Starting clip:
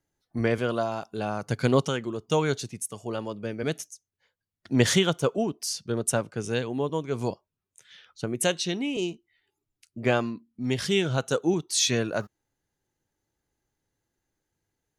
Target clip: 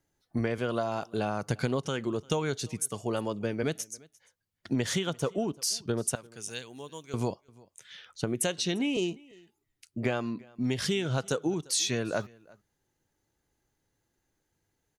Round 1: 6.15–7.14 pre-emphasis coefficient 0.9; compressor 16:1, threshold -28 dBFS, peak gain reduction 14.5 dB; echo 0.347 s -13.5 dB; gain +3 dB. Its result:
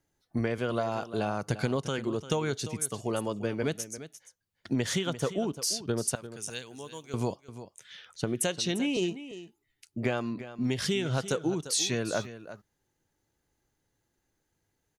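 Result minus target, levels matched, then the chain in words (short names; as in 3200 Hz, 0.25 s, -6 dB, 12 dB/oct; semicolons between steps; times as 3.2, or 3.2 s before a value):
echo-to-direct +11.5 dB
6.15–7.14 pre-emphasis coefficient 0.9; compressor 16:1, threshold -28 dBFS, peak gain reduction 14.5 dB; echo 0.347 s -25 dB; gain +3 dB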